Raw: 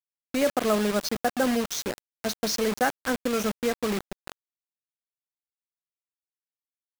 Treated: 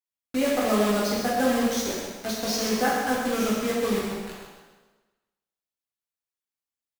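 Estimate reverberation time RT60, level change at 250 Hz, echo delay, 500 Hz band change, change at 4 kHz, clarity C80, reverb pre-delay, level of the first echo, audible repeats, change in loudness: 1.3 s, +3.0 dB, 130 ms, +1.5 dB, +1.5 dB, 1.5 dB, 4 ms, −6.0 dB, 1, +1.5 dB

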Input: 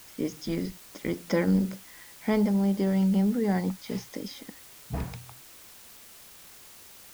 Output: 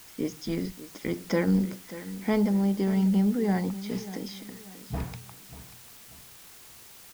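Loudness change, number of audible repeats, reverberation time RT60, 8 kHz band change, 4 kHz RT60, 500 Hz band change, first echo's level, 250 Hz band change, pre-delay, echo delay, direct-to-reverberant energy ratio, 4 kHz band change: 0.0 dB, 3, no reverb audible, 0.0 dB, no reverb audible, −0.5 dB, −15.0 dB, 0.0 dB, no reverb audible, 588 ms, no reverb audible, 0.0 dB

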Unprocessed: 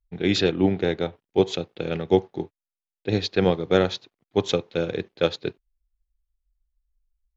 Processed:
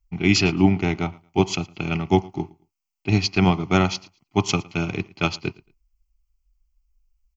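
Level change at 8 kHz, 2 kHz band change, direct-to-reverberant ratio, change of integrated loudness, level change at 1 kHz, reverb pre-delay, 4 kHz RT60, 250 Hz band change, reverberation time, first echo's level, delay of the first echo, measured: can't be measured, +6.0 dB, no reverb audible, +2.0 dB, +5.5 dB, no reverb audible, no reverb audible, +4.0 dB, no reverb audible, −23.5 dB, 112 ms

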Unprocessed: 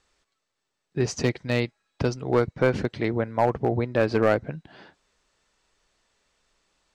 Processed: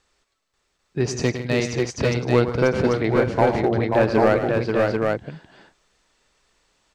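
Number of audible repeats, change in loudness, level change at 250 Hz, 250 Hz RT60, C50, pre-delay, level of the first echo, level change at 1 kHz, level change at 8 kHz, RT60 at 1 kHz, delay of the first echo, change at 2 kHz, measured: 5, +4.5 dB, +5.0 dB, no reverb audible, no reverb audible, no reverb audible, −10.5 dB, +5.0 dB, can't be measured, no reverb audible, 105 ms, +5.0 dB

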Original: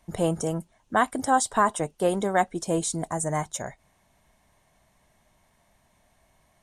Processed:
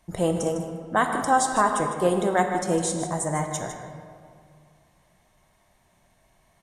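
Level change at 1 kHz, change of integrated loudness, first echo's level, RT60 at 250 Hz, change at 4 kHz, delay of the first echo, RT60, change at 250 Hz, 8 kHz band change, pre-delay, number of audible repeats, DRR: +2.0 dB, +1.5 dB, −11.0 dB, 2.5 s, +1.0 dB, 154 ms, 2.2 s, +1.5 dB, +1.0 dB, 4 ms, 1, 3.0 dB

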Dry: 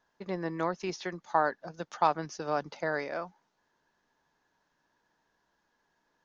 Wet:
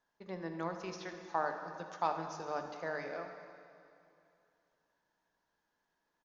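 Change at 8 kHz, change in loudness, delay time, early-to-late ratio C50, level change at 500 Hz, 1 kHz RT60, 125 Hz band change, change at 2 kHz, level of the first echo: can't be measured, −7.0 dB, 78 ms, 6.0 dB, −7.0 dB, 2.6 s, −7.0 dB, −7.0 dB, −14.5 dB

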